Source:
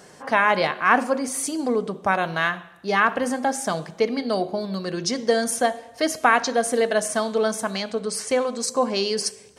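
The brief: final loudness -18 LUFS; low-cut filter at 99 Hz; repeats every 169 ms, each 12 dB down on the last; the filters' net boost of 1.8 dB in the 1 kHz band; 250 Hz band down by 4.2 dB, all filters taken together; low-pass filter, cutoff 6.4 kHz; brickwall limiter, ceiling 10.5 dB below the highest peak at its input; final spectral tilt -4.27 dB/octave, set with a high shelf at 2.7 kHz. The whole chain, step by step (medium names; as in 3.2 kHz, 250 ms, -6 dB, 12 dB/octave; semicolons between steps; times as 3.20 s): high-pass 99 Hz; low-pass 6.4 kHz; peaking EQ 250 Hz -5 dB; peaking EQ 1 kHz +4 dB; treble shelf 2.7 kHz -9 dB; peak limiter -14 dBFS; feedback delay 169 ms, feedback 25%, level -12 dB; trim +8.5 dB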